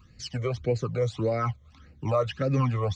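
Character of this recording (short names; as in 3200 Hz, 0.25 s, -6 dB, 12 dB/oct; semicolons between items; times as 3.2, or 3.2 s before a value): phasing stages 12, 1.7 Hz, lowest notch 260–1100 Hz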